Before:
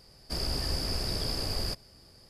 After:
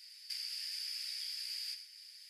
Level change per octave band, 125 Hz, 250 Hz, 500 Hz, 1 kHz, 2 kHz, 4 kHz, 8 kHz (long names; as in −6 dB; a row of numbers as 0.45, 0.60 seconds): below −40 dB, below −40 dB, below −40 dB, below −30 dB, −7.0 dB, −5.5 dB, −6.5 dB